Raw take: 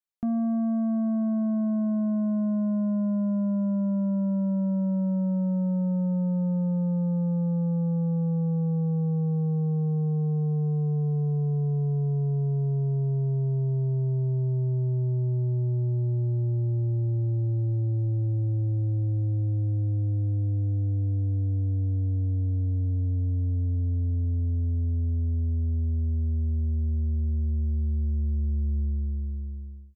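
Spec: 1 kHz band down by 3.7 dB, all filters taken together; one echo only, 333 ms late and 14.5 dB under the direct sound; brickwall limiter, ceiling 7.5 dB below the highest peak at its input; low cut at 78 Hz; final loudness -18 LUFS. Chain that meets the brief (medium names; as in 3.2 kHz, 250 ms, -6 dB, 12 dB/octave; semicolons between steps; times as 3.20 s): high-pass 78 Hz; peaking EQ 1 kHz -5.5 dB; peak limiter -29 dBFS; delay 333 ms -14.5 dB; trim +16.5 dB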